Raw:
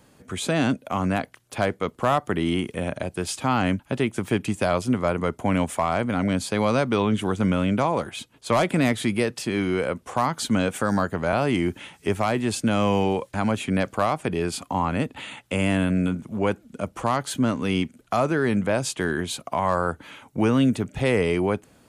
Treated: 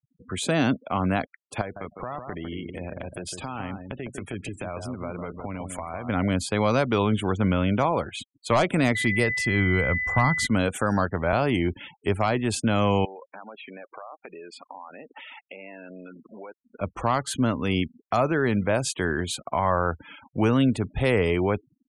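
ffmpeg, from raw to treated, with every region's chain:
ffmpeg -i in.wav -filter_complex "[0:a]asettb=1/sr,asplit=3[link_01][link_02][link_03];[link_01]atrim=end=1.614[link_04];[link_02]atrim=start=1.61:end=6.09,asetpts=PTS-STARTPTS,afade=type=in:duration=0.004:curve=qsin,afade=type=out:start_time=4.476:duration=0.004:curve=qsin,acompressor=threshold=-31dB:ratio=4:attack=3.2:release=140:knee=1:detection=peak,asplit=2[link_05][link_06];[link_06]adelay=154,lowpass=frequency=2600:poles=1,volume=-6dB,asplit=2[link_07][link_08];[link_08]adelay=154,lowpass=frequency=2600:poles=1,volume=0.17,asplit=2[link_09][link_10];[link_10]adelay=154,lowpass=frequency=2600:poles=1,volume=0.17[link_11];[link_05][link_07][link_09][link_11]amix=inputs=4:normalize=0,atrim=end_sample=197568[link_12];[link_03]atrim=start=6.086[link_13];[link_04][link_12]acrossfade=duration=0.004:curve1=hsin:curve2=qsin[link_14];[link_14][link_13]acrossfade=duration=0.004:curve1=qsin:curve2=hsin,asettb=1/sr,asplit=3[link_15][link_16][link_17];[link_15]atrim=end=8.954[link_18];[link_16]atrim=start=8.95:end=10.47,asetpts=PTS-STARTPTS,afade=type=in:duration=0.004:curve=qsin,afade=type=out:start_time=1.516:duration=0.004:curve=qsin,asubboost=boost=10.5:cutoff=170,aeval=exprs='val(0)+0.0562*sin(2*PI*2000*n/s)':channel_layout=same[link_19];[link_17]atrim=start=10.466[link_20];[link_18][link_19]acrossfade=duration=0.004:curve1=hsin:curve2=qsin[link_21];[link_21][link_20]acrossfade=duration=0.004:curve1=qsin:curve2=hsin,asettb=1/sr,asplit=3[link_22][link_23][link_24];[link_22]atrim=end=13.054[link_25];[link_23]atrim=start=13.05:end=16.81,asetpts=PTS-STARTPTS,afade=type=in:duration=0.004:curve=qsin,afade=type=out:start_time=3.756:duration=0.004:curve=qsin,highpass=420,aemphasis=mode=reproduction:type=cd,acompressor=threshold=-37dB:ratio=6:attack=3.2:release=140:knee=1:detection=peak[link_26];[link_24]atrim=start=16.806[link_27];[link_25][link_26]acrossfade=duration=0.004:curve1=hsin:curve2=qsin[link_28];[link_28][link_27]acrossfade=duration=0.004:curve1=qsin:curve2=hsin,afftfilt=real='re*gte(hypot(re,im),0.0126)':imag='im*gte(hypot(re,im),0.0126)':win_size=1024:overlap=0.75,asubboost=boost=2.5:cutoff=90" out.wav

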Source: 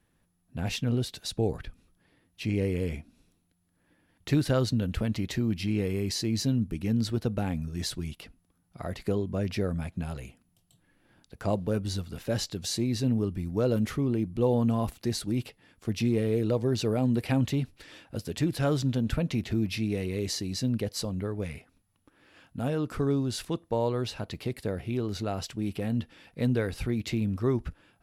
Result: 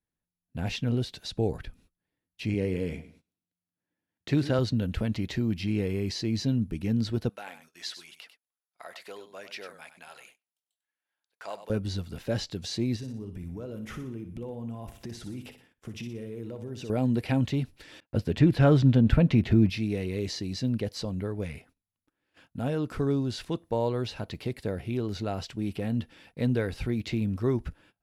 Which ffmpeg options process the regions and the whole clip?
ffmpeg -i in.wav -filter_complex "[0:a]asettb=1/sr,asplit=3[link_01][link_02][link_03];[link_01]atrim=end=2.544[link_04];[link_02]atrim=start=2.54:end=4.59,asetpts=PTS-STARTPTS,afade=type=in:duration=0.004:curve=qsin,afade=type=out:start_time=2.046:duration=0.004:curve=qsin,highpass=100,highshelf=frequency=9200:gain=-7,aecho=1:1:104|208|312:0.188|0.0527|0.0148,atrim=end_sample=90405[link_05];[link_03]atrim=start=4.586[link_06];[link_04][link_05]acrossfade=duration=0.004:curve1=hsin:curve2=qsin[link_07];[link_07][link_06]acrossfade=duration=0.004:curve1=qsin:curve2=hsin,asettb=1/sr,asplit=3[link_08][link_09][link_10];[link_08]atrim=end=7.294[link_11];[link_09]atrim=start=7.29:end=11.7,asetpts=PTS-STARTPTS,afade=type=in:duration=0.004:curve=qsin,afade=type=out:start_time=4.406:duration=0.004:curve=qsin,highpass=970,aecho=1:1:97:0.266,atrim=end_sample=194481[link_12];[link_10]atrim=start=11.696[link_13];[link_11][link_12]acrossfade=duration=0.004:curve1=hsin:curve2=qsin[link_14];[link_14][link_13]acrossfade=duration=0.004:curve1=qsin:curve2=hsin,asettb=1/sr,asplit=3[link_15][link_16][link_17];[link_15]atrim=end=12.964[link_18];[link_16]atrim=start=12.96:end=16.9,asetpts=PTS-STARTPTS,afade=type=in:duration=0.004:curve=qsin,afade=type=out:start_time=3.936:duration=0.004:curve=qsin,acompressor=threshold=-34dB:ratio=10:attack=3.2:release=140:knee=1:detection=peak,equalizer=frequency=4300:width_type=o:width=0.26:gain=-9.5,aecho=1:1:60|120|180|240|300:0.316|0.142|0.064|0.0288|0.013,atrim=end_sample=173754[link_19];[link_17]atrim=start=16.896[link_20];[link_18][link_19]acrossfade=duration=0.004:curve1=hsin:curve2=qsin[link_21];[link_21][link_20]acrossfade=duration=0.004:curve1=qsin:curve2=hsin,asettb=1/sr,asplit=3[link_22][link_23][link_24];[link_22]atrim=end=18.004[link_25];[link_23]atrim=start=18:end=19.7,asetpts=PTS-STARTPTS,afade=type=in:duration=0.004:curve=qsin,afade=type=out:start_time=1.696:duration=0.004:curve=qsin,agate=range=-33dB:threshold=-42dB:ratio=3:release=100:detection=peak,bass=frequency=250:gain=3,treble=frequency=4000:gain=-11,acontrast=33[link_26];[link_24]atrim=start=19.696[link_27];[link_25][link_26]acrossfade=duration=0.004:curve1=hsin:curve2=qsin[link_28];[link_28][link_27]acrossfade=duration=0.004:curve1=qsin:curve2=hsin,acrossover=split=5700[link_29][link_30];[link_30]acompressor=threshold=-55dB:ratio=4:attack=1:release=60[link_31];[link_29][link_31]amix=inputs=2:normalize=0,agate=range=-20dB:threshold=-56dB:ratio=16:detection=peak,bandreject=frequency=1200:width=15" out.wav

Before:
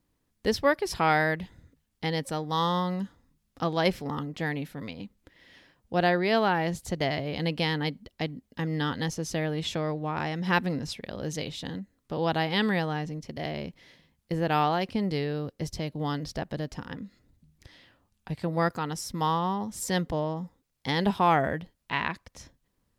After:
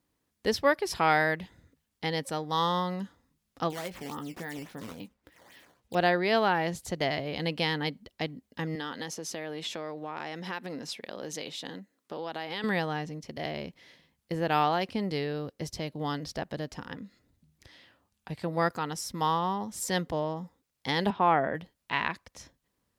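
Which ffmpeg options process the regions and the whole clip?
ffmpeg -i in.wav -filter_complex "[0:a]asettb=1/sr,asplit=3[link_01][link_02][link_03];[link_01]atrim=end=3.704[link_04];[link_02]atrim=start=3.7:end=5.95,asetpts=PTS-STARTPTS,afade=type=in:duration=0.004:curve=qsin,afade=type=out:start_time=2.246:duration=0.004:curve=qsin,acrusher=samples=10:mix=1:aa=0.000001:lfo=1:lforange=16:lforate=3.6,acompressor=threshold=-31dB:ratio=10:attack=3.2:release=140:knee=1:detection=peak,asplit=2[link_05][link_06];[link_06]adelay=17,volume=-10dB[link_07];[link_05][link_07]amix=inputs=2:normalize=0,atrim=end_sample=99225[link_08];[link_03]atrim=start=5.946[link_09];[link_04][link_08]acrossfade=duration=0.004:curve1=hsin:curve2=qsin[link_10];[link_10][link_09]acrossfade=duration=0.004:curve1=qsin:curve2=hsin,asettb=1/sr,asplit=3[link_11][link_12][link_13];[link_11]atrim=end=8.754[link_14];[link_12]atrim=start=8.75:end=12.64,asetpts=PTS-STARTPTS,afade=type=in:duration=0.004:curve=qsin,afade=type=out:start_time=3.886:duration=0.004:curve=qsin,highpass=230,acompressor=threshold=-31dB:ratio=5:attack=3.2:release=140:knee=1:detection=peak[link_15];[link_13]atrim=start=12.636[link_16];[link_14][link_15]acrossfade=duration=0.004:curve1=hsin:curve2=qsin[link_17];[link_17][link_16]acrossfade=duration=0.004:curve1=qsin:curve2=hsin,asettb=1/sr,asplit=3[link_18][link_19][link_20];[link_18]atrim=end=21.104[link_21];[link_19]atrim=start=21.1:end=21.55,asetpts=PTS-STARTPTS,afade=type=in:duration=0.004:curve=qsin,afade=type=out:start_time=0.446:duration=0.004:curve=qsin,highpass=130,lowpass=3500,aemphasis=mode=reproduction:type=75kf[link_22];[link_20]atrim=start=21.546[link_23];[link_21][link_22]acrossfade=duration=0.004:curve1=hsin:curve2=qsin[link_24];[link_24][link_23]acrossfade=duration=0.004:curve1=qsin:curve2=hsin,highpass=56,equalizer=frequency=110:width=0.47:gain=-5" out.wav

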